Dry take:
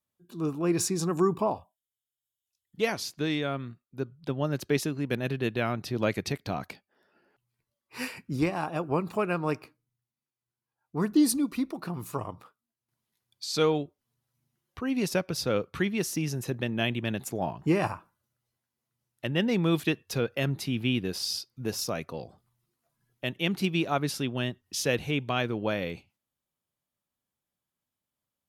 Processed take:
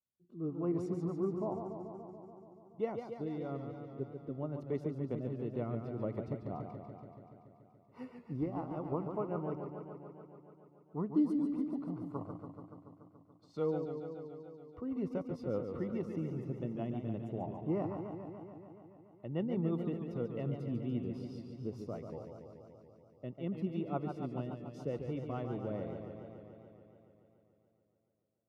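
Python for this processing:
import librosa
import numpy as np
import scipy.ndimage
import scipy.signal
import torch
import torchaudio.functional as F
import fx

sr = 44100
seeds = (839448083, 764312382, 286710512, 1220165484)

y = scipy.signal.savgol_filter(x, 65, 4, mode='constant')
y = fx.rotary_switch(y, sr, hz=1.0, then_hz=5.0, switch_at_s=4.54)
y = fx.echo_warbled(y, sr, ms=143, feedback_pct=75, rate_hz=2.8, cents=103, wet_db=-7)
y = F.gain(torch.from_numpy(y), -7.5).numpy()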